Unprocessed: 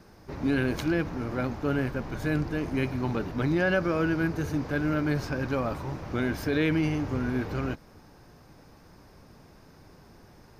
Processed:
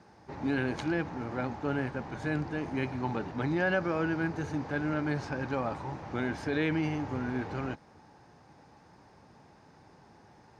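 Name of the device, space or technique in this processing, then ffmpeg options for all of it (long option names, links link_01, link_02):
car door speaker: -af "highpass=86,equalizer=frequency=840:width_type=q:width=4:gain=9,equalizer=frequency=1800:width_type=q:width=4:gain=3,equalizer=frequency=5300:width_type=q:width=4:gain=-3,lowpass=frequency=8300:width=0.5412,lowpass=frequency=8300:width=1.3066,volume=-4.5dB"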